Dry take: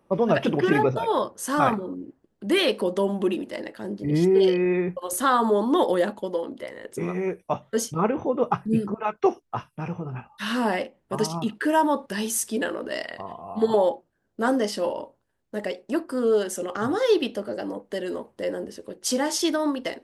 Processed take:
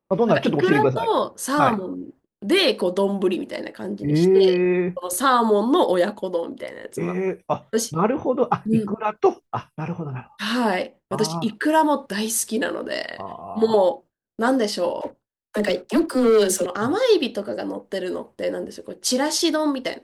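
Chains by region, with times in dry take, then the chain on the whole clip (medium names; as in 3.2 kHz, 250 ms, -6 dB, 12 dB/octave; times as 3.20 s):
15.01–16.66 s: dynamic bell 1 kHz, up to -6 dB, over -40 dBFS, Q 1.1 + waveshaping leveller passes 2 + phase dispersion lows, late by 43 ms, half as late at 470 Hz
whole clip: dynamic bell 4.2 kHz, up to +6 dB, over -53 dBFS, Q 4; gate with hold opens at -41 dBFS; trim +3 dB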